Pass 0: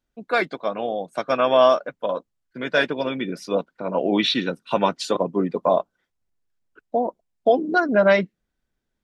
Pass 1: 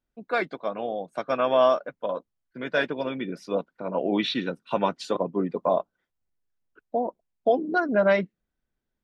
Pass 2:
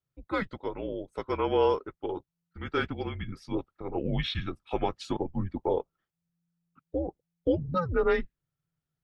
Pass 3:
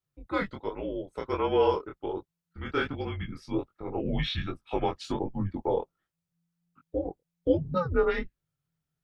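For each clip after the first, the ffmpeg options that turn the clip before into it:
ffmpeg -i in.wav -af "highshelf=frequency=4000:gain=-7.5,volume=-4dB" out.wav
ffmpeg -i in.wav -af "afreqshift=-170,volume=-4.5dB" out.wav
ffmpeg -i in.wav -af "flanger=delay=19:depth=6.5:speed=1.3,volume=3.5dB" out.wav

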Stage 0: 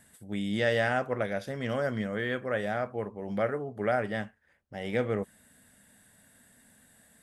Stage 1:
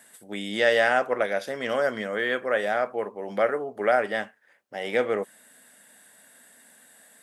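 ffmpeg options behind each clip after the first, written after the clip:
ffmpeg -i in.wav -af "highpass=380,volume=7dB" out.wav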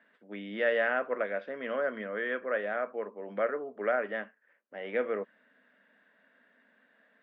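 ffmpeg -i in.wav -af "highpass=frequency=190:width=0.5412,highpass=frequency=190:width=1.3066,equalizer=frequency=360:width_type=q:width=4:gain=-3,equalizer=frequency=800:width_type=q:width=4:gain=-9,equalizer=frequency=2100:width_type=q:width=4:gain=-3,lowpass=frequency=2500:width=0.5412,lowpass=frequency=2500:width=1.3066,volume=-5dB" out.wav

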